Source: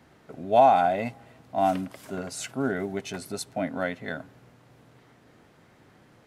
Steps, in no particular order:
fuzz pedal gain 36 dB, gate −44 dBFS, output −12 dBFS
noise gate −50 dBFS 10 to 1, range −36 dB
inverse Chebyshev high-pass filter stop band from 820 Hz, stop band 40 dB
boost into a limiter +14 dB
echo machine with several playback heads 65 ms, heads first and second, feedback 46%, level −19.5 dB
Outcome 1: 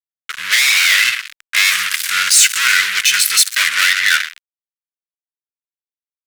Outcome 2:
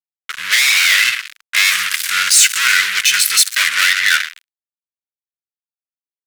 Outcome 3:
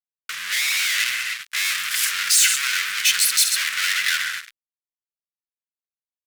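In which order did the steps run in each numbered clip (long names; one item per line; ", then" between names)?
echo machine with several playback heads, then noise gate, then fuzz pedal, then inverse Chebyshev high-pass filter, then boost into a limiter
echo machine with several playback heads, then fuzz pedal, then inverse Chebyshev high-pass filter, then noise gate, then boost into a limiter
echo machine with several playback heads, then noise gate, then boost into a limiter, then fuzz pedal, then inverse Chebyshev high-pass filter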